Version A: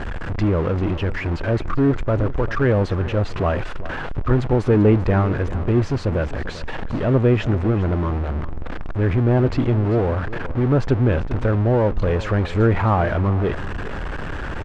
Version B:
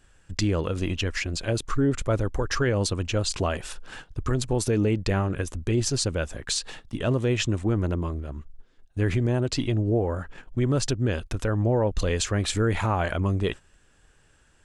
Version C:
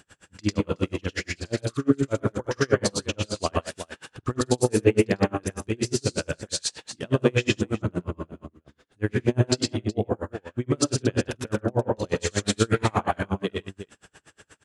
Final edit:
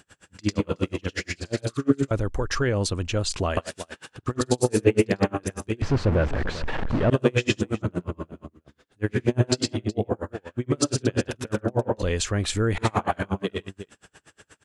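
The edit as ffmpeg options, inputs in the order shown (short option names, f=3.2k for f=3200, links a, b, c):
-filter_complex "[1:a]asplit=2[a][b];[2:a]asplit=4[c][d][e][f];[c]atrim=end=2.112[g];[a]atrim=start=2.108:end=3.572[h];[d]atrim=start=3.568:end=5.822[i];[0:a]atrim=start=5.818:end=7.102[j];[e]atrim=start=7.098:end=12.022[k];[b]atrim=start=12.018:end=12.782[l];[f]atrim=start=12.778[m];[g][h]acrossfade=d=0.004:c1=hsin:c2=hsin[n];[n][i]acrossfade=d=0.004:c1=hsin:c2=hsin[o];[o][j]acrossfade=d=0.004:c1=hsin:c2=hsin[p];[p][k]acrossfade=d=0.004:c1=hsin:c2=hsin[q];[q][l]acrossfade=d=0.004:c1=hsin:c2=hsin[r];[r][m]acrossfade=d=0.004:c1=hsin:c2=hsin"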